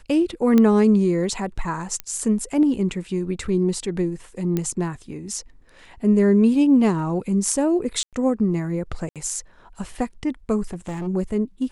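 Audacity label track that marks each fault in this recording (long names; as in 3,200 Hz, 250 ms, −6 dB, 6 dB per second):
0.580000	0.580000	click −7 dBFS
2.000000	2.000000	click −12 dBFS
4.570000	4.570000	click −11 dBFS
8.030000	8.130000	drop-out 97 ms
9.090000	9.160000	drop-out 67 ms
10.730000	11.080000	clipping −25.5 dBFS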